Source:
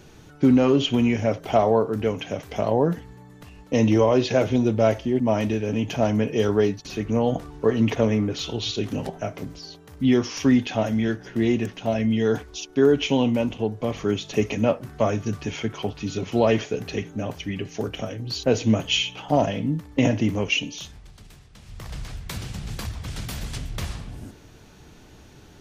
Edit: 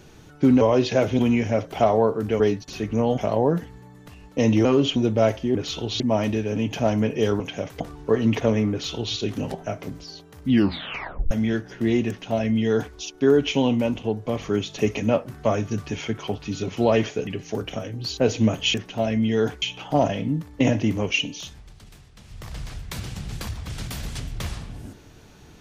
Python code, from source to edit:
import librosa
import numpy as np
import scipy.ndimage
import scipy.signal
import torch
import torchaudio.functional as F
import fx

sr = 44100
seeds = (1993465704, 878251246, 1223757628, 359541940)

y = fx.edit(x, sr, fx.swap(start_s=0.61, length_s=0.31, other_s=4.0, other_length_s=0.58),
    fx.swap(start_s=2.13, length_s=0.4, other_s=6.57, other_length_s=0.78),
    fx.duplicate(start_s=8.26, length_s=0.45, to_s=5.17),
    fx.tape_stop(start_s=10.05, length_s=0.81),
    fx.duplicate(start_s=11.62, length_s=0.88, to_s=19.0),
    fx.cut(start_s=16.82, length_s=0.71), tone=tone)